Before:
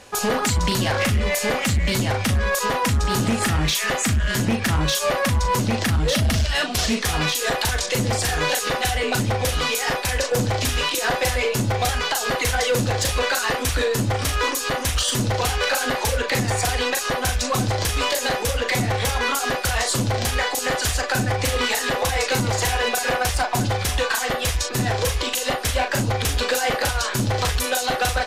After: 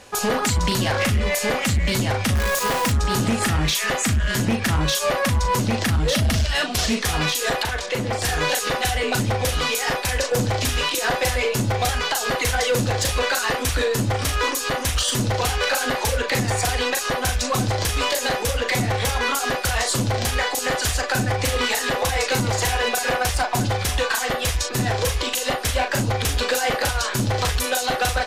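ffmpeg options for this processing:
-filter_complex "[0:a]asettb=1/sr,asplit=3[a][b][c];[a]atrim=end=2.354[d];[b]atrim=start=2.35:end=2.92,asetpts=PTS-STARTPTS,afade=t=in:d=0.004:c=qsin,afade=t=out:st=0.566:d=0.004:c=qsin,acrusher=bits=5:dc=4:mix=0:aa=0.000001[e];[c]atrim=start=2.916[f];[d][e]acrossfade=d=0.004:c1=hsin:c2=qsin[g];[g][f]acrossfade=d=0.004:c1=qsin:c2=hsin,asettb=1/sr,asplit=3[h][i][j];[h]atrim=end=7.634[k];[i]atrim=start=7.63:end=8.22,asetpts=PTS-STARTPTS,afade=t=in:d=0.004:c=qsin,afade=t=out:st=0.586:d=0.004:c=qsin,bass=f=250:g=-5,treble=f=4k:g=-10[l];[j]atrim=start=8.216[m];[k][l]acrossfade=d=0.004:c1=hsin:c2=qsin[n];[n][m]acrossfade=d=0.004:c1=qsin:c2=hsin"

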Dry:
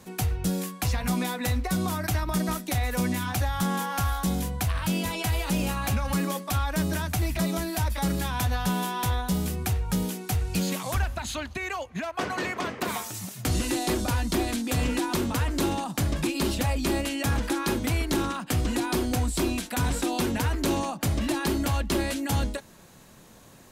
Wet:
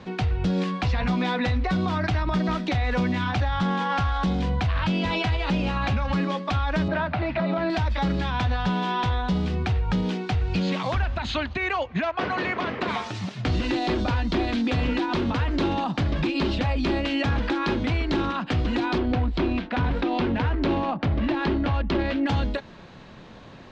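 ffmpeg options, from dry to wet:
-filter_complex "[0:a]asettb=1/sr,asplit=3[a][b][c];[a]atrim=end=0.504[d];[b]atrim=start=0.5:end=5.37,asetpts=PTS-STARTPTS,afade=t=in:d=0.004:c=qsin,afade=t=out:st=4.866:d=0.004:c=qsin,acontrast=30[e];[c]atrim=start=5.366[f];[d][e]acrossfade=d=0.004:c1=hsin:c2=qsin[g];[g][f]acrossfade=d=0.004:c1=qsin:c2=hsin,asettb=1/sr,asplit=3[h][i][j];[h]atrim=end=6.884[k];[i]atrim=start=6.88:end=7.7,asetpts=PTS-STARTPTS,afade=t=in:d=0.004:c=qsin,afade=t=out:st=0.816:d=0.004:c=qsin,highpass=130,equalizer=f=390:t=q:w=4:g=-4,equalizer=f=610:t=q:w=4:g=8,equalizer=f=900:t=q:w=4:g=4,equalizer=f=1.4k:t=q:w=4:g=5,equalizer=f=3.3k:t=q:w=4:g=-5,lowpass=f=3.8k:w=0.5412,lowpass=f=3.8k:w=1.3066[l];[j]atrim=start=7.696[m];[k][l]acrossfade=d=0.004:c1=hsin:c2=qsin[n];[n][m]acrossfade=d=0.004:c1=qsin:c2=hsin,asettb=1/sr,asplit=3[o][p][q];[o]atrim=end=18.984[r];[p]atrim=start=18.98:end=22.27,asetpts=PTS-STARTPTS,afade=t=in:d=0.004:c=qsin,afade=t=out:st=3.286:d=0.004:c=qsin,adynamicsmooth=sensitivity=4.5:basefreq=1.4k[s];[q]atrim=start=22.266[t];[r][s]acrossfade=d=0.004:c1=hsin:c2=qsin[u];[u][t]acrossfade=d=0.004:c1=qsin:c2=hsin,lowpass=f=4.1k:w=0.5412,lowpass=f=4.1k:w=1.3066,alimiter=level_in=0.5dB:limit=-24dB:level=0:latency=1:release=115,volume=-0.5dB,volume=7.5dB"

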